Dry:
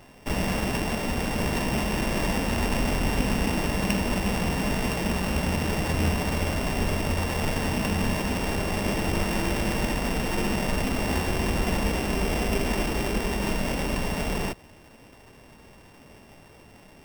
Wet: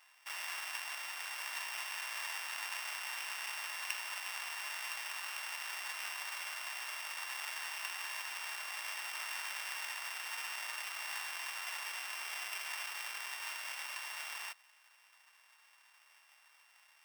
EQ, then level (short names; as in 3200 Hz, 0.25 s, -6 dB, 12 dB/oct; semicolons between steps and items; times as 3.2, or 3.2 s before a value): HPF 1100 Hz 24 dB/oct; -8.0 dB